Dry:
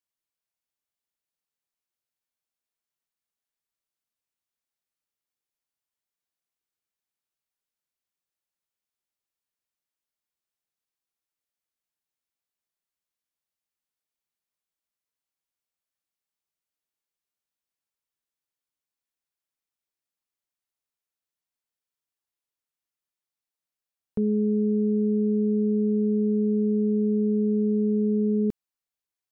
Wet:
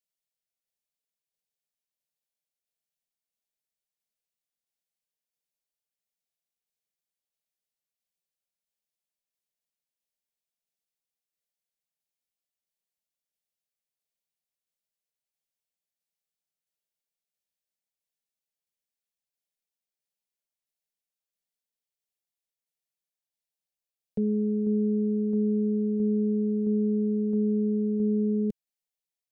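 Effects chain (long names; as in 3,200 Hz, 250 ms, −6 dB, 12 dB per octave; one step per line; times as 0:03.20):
phaser with its sweep stopped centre 310 Hz, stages 6
shaped tremolo saw down 1.5 Hz, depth 30%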